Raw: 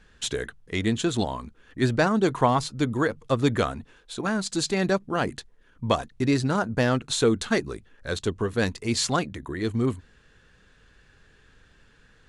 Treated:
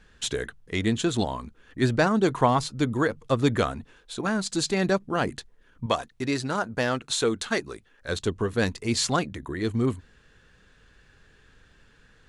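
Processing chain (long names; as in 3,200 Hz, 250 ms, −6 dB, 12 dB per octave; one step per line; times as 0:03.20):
0:05.86–0:08.09: low-shelf EQ 320 Hz −9 dB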